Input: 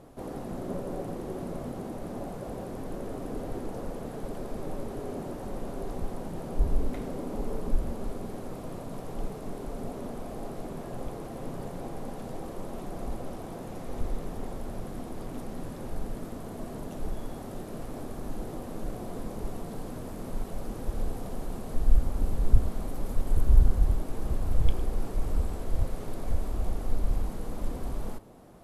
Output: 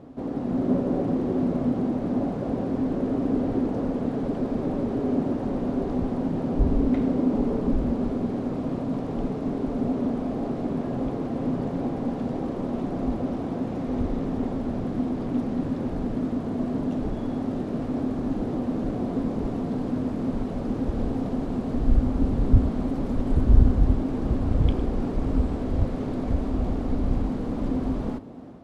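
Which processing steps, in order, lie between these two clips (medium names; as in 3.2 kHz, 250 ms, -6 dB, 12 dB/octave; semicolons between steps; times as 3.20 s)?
high-pass 110 Hz 6 dB/octave; peaking EQ 260 Hz +10.5 dB 0.26 oct; level rider gain up to 4 dB; low-pass 4.4 kHz 12 dB/octave; bass shelf 450 Hz +8 dB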